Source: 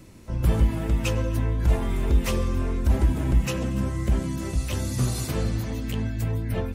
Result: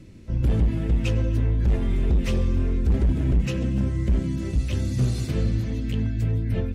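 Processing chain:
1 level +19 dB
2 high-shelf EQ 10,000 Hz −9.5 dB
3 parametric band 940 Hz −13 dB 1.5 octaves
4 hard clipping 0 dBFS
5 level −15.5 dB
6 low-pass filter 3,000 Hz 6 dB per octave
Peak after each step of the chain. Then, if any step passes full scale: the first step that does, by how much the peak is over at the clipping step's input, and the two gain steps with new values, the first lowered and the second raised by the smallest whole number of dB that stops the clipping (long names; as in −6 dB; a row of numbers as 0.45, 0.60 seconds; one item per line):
+9.5, +9.5, +9.0, 0.0, −15.5, −15.5 dBFS
step 1, 9.0 dB
step 1 +10 dB, step 5 −6.5 dB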